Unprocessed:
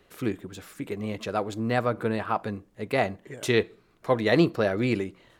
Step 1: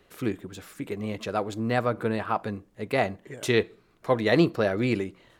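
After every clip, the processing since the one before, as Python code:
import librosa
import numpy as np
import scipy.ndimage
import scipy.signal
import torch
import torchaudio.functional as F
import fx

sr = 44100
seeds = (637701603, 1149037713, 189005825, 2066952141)

y = x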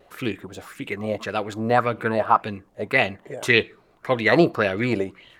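y = fx.vibrato(x, sr, rate_hz=0.99, depth_cents=24.0)
y = fx.bell_lfo(y, sr, hz=1.8, low_hz=580.0, high_hz=3100.0, db=15)
y = y * 10.0 ** (1.0 / 20.0)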